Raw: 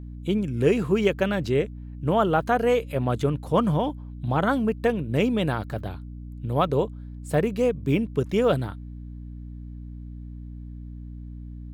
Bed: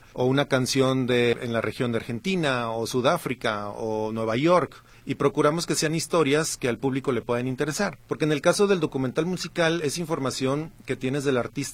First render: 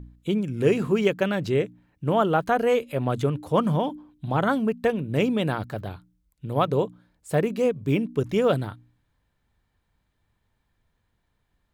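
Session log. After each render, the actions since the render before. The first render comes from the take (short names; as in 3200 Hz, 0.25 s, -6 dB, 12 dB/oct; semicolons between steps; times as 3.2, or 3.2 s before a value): de-hum 60 Hz, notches 5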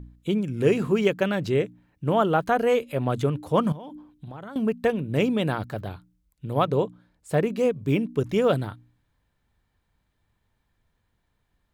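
3.72–4.56 compressor 16:1, threshold -35 dBFS; 6.64–7.58 high shelf 8500 Hz -5 dB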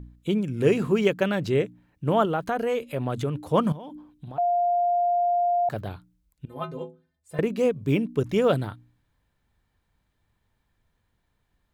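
2.25–3.37 compressor 2:1, threshold -25 dBFS; 4.38–5.69 bleep 702 Hz -19.5 dBFS; 6.45–7.39 metallic resonator 76 Hz, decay 0.52 s, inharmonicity 0.03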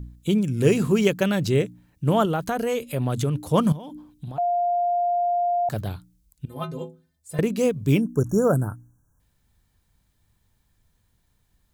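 8–9.2 spectral delete 1700–5500 Hz; tone controls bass +6 dB, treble +12 dB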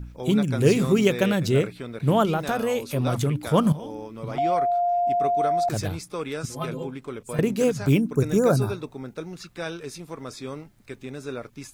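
add bed -10 dB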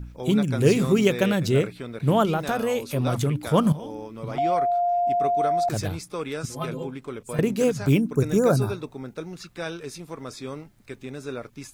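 nothing audible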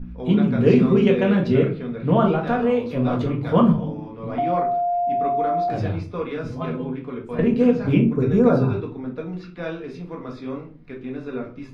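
air absorption 320 m; shoebox room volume 240 m³, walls furnished, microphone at 1.8 m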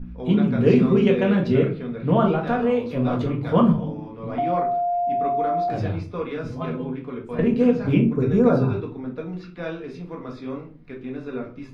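gain -1 dB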